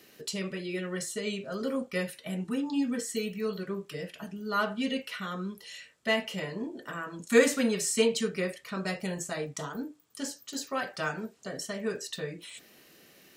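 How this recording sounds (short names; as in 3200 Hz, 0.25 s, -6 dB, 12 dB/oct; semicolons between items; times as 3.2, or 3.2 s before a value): noise floor -58 dBFS; spectral tilt -3.5 dB/oct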